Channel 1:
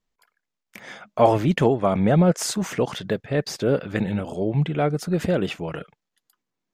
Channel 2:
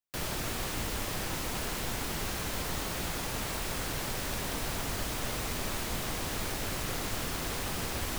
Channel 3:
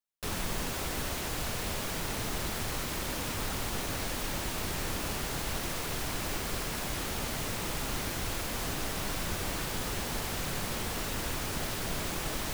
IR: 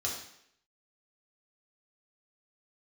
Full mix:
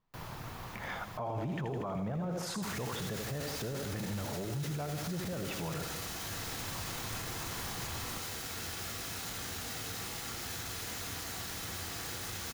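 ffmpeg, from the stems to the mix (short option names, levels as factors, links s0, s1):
-filter_complex "[0:a]acompressor=threshold=0.0794:ratio=2,volume=0.75,asplit=3[s0][s1][s2];[s1]volume=0.237[s3];[1:a]volume=0.211,asplit=2[s4][s5];[s5]volume=0.158[s6];[2:a]alimiter=level_in=2:limit=0.0631:level=0:latency=1,volume=0.501,aeval=exprs='0.0112*(abs(mod(val(0)/0.0112+3,4)-2)-1)':c=same,highpass=51,adelay=2400,volume=0.944,asplit=2[s7][s8];[s8]volume=0.631[s9];[s2]apad=whole_len=360894[s10];[s4][s10]sidechaincompress=threshold=0.00891:ratio=8:attack=16:release=912[s11];[s0][s11]amix=inputs=2:normalize=0,equalizer=f=125:t=o:w=1:g=11,equalizer=f=1000:t=o:w=1:g=10,equalizer=f=8000:t=o:w=1:g=-9,acompressor=threshold=0.02:ratio=2,volume=1[s12];[3:a]atrim=start_sample=2205[s13];[s6][s9]amix=inputs=2:normalize=0[s14];[s14][s13]afir=irnorm=-1:irlink=0[s15];[s3]aecho=0:1:80|160|240|320|400|480|560|640|720:1|0.58|0.336|0.195|0.113|0.0656|0.0381|0.0221|0.0128[s16];[s7][s12][s15][s16]amix=inputs=4:normalize=0,alimiter=level_in=1.88:limit=0.0631:level=0:latency=1:release=12,volume=0.531"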